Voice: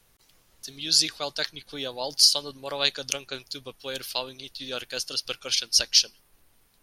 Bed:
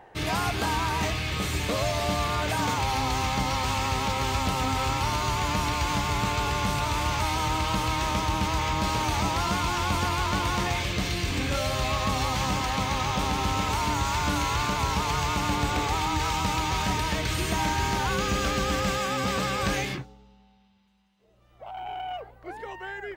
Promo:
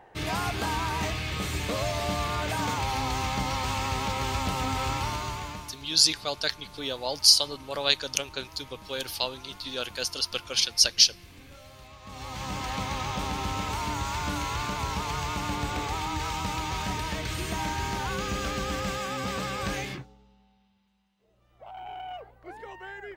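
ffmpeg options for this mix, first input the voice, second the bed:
ffmpeg -i stem1.wav -i stem2.wav -filter_complex "[0:a]adelay=5050,volume=0.5dB[link_01];[1:a]volume=15dB,afade=type=out:start_time=4.95:duration=0.8:silence=0.105925,afade=type=in:start_time=12.02:duration=0.7:silence=0.133352[link_02];[link_01][link_02]amix=inputs=2:normalize=0" out.wav

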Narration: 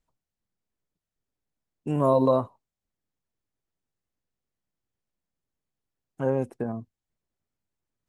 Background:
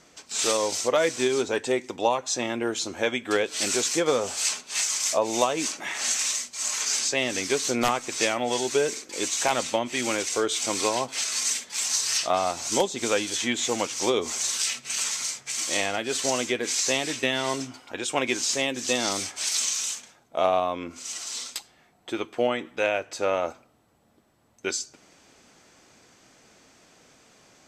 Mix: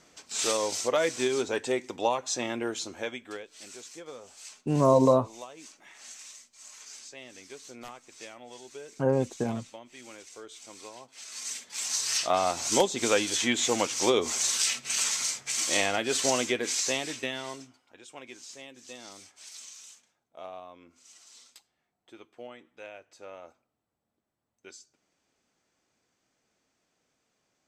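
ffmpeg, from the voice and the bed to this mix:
ffmpeg -i stem1.wav -i stem2.wav -filter_complex "[0:a]adelay=2800,volume=0.5dB[link_01];[1:a]volume=17dB,afade=type=out:start_time=2.56:duration=0.9:silence=0.141254,afade=type=in:start_time=11.15:duration=1.45:silence=0.0944061,afade=type=out:start_time=16.24:duration=1.54:silence=0.1[link_02];[link_01][link_02]amix=inputs=2:normalize=0" out.wav

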